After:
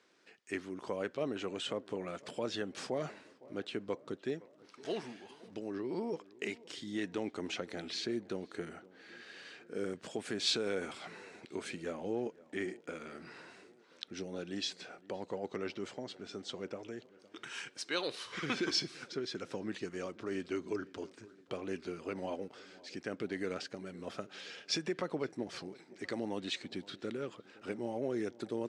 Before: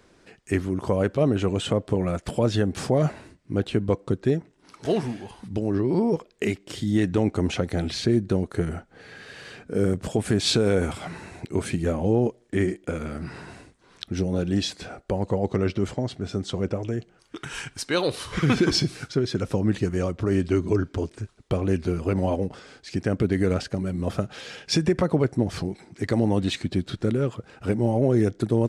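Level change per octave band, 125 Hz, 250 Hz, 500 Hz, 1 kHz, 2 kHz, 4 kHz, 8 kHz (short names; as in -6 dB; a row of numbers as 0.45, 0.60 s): -25.0, -16.0, -13.5, -11.5, -8.5, -7.5, -10.5 dB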